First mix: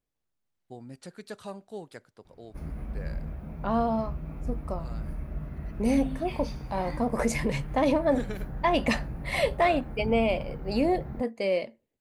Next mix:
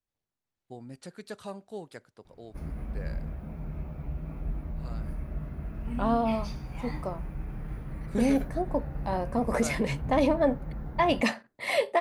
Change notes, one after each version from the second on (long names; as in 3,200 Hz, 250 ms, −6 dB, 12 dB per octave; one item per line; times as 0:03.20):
second voice: entry +2.35 s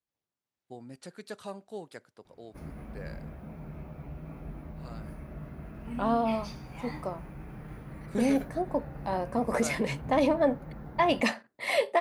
master: add high-pass filter 160 Hz 6 dB per octave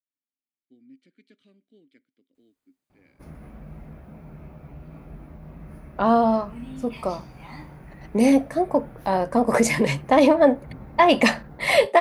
first voice: add formant filter i
second voice +9.0 dB
background: entry +0.65 s